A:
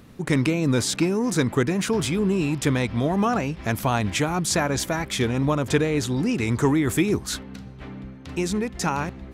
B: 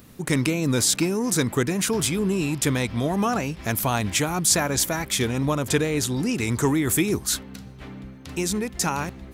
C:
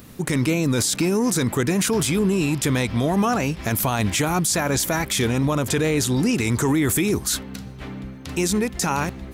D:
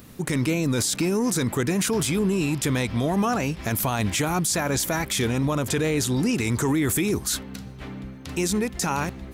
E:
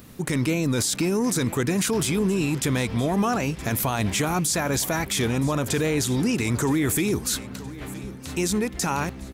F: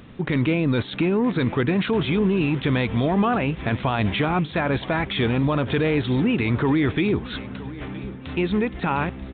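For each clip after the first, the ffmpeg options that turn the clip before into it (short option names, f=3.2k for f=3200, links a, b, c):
-af "aemphasis=mode=production:type=50kf,volume=-1.5dB"
-af "alimiter=limit=-17.5dB:level=0:latency=1:release=19,volume=5dB"
-af "acontrast=27,volume=-7.5dB"
-af "aecho=1:1:969|1938|2907:0.133|0.052|0.0203"
-af "aresample=8000,aresample=44100,volume=2.5dB"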